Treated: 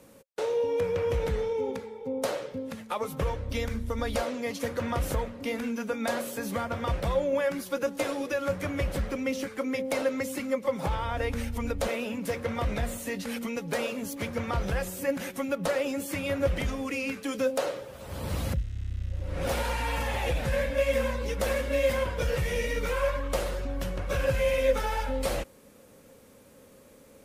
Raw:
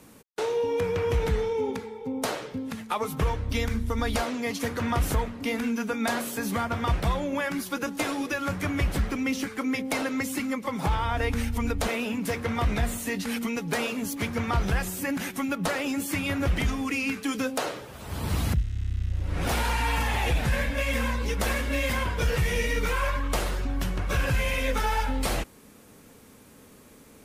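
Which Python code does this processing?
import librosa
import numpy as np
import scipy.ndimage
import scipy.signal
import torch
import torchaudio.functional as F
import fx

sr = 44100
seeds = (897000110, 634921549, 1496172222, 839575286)

y = fx.peak_eq(x, sr, hz=540.0, db=14.0, octaves=0.23)
y = y * 10.0 ** (-4.5 / 20.0)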